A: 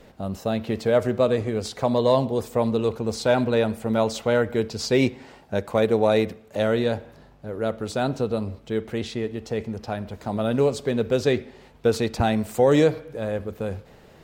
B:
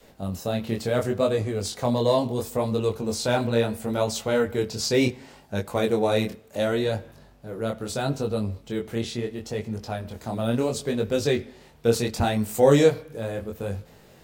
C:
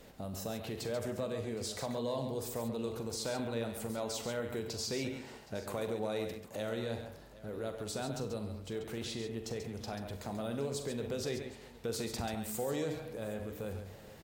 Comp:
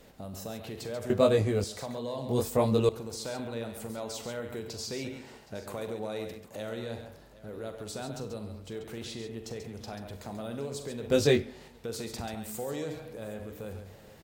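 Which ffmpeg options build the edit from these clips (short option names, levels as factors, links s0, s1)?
-filter_complex "[1:a]asplit=3[s0][s1][s2];[2:a]asplit=4[s3][s4][s5][s6];[s3]atrim=end=1.102[s7];[s0]atrim=start=1.098:end=1.642[s8];[s4]atrim=start=1.638:end=2.292[s9];[s1]atrim=start=2.288:end=2.892[s10];[s5]atrim=start=2.888:end=11.102[s11];[s2]atrim=start=11.098:end=11.682[s12];[s6]atrim=start=11.678[s13];[s7][s8]acrossfade=d=0.004:c1=hsin:c2=hsin[s14];[s14][s9]acrossfade=d=0.004:c1=hsin:c2=hsin[s15];[s15][s10]acrossfade=d=0.004:c1=hsin:c2=hsin[s16];[s16][s11]acrossfade=d=0.004:c1=hsin:c2=hsin[s17];[s17][s12]acrossfade=d=0.004:c1=hsin:c2=hsin[s18];[s18][s13]acrossfade=d=0.004:c1=hsin:c2=hsin"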